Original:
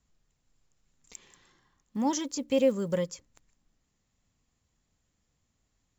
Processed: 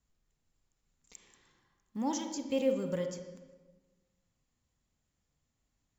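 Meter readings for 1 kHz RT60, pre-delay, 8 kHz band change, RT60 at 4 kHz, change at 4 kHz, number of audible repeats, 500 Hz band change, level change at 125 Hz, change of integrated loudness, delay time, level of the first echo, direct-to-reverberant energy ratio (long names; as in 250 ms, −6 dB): 1.2 s, 28 ms, can't be measured, 0.90 s, −5.5 dB, no echo audible, −5.0 dB, −4.5 dB, −5.0 dB, no echo audible, no echo audible, 5.5 dB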